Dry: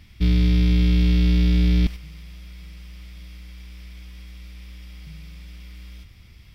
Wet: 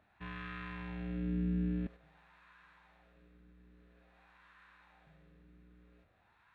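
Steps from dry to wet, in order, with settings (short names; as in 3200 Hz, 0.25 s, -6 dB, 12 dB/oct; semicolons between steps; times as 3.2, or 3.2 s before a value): wah 0.49 Hz 380–1500 Hz, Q 2.7; formant shift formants -5 st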